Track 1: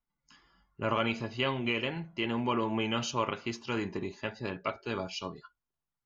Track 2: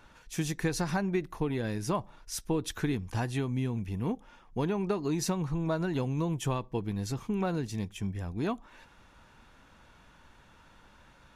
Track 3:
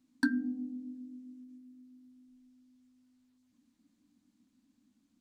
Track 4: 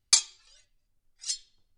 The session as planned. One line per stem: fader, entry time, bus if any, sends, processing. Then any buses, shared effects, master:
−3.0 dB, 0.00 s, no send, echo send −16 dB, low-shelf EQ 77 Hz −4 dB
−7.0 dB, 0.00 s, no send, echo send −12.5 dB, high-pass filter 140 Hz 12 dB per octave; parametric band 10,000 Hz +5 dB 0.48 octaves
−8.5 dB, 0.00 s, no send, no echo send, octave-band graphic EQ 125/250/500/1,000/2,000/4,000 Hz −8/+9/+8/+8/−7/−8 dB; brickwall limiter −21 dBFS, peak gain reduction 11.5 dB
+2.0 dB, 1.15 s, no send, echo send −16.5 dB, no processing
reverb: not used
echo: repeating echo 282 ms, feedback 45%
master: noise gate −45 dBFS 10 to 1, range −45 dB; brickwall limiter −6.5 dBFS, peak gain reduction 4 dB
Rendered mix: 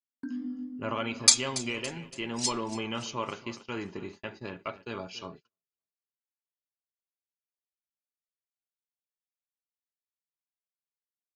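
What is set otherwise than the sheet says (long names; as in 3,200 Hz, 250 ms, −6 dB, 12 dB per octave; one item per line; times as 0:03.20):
stem 2: muted
master: missing brickwall limiter −6.5 dBFS, peak gain reduction 4 dB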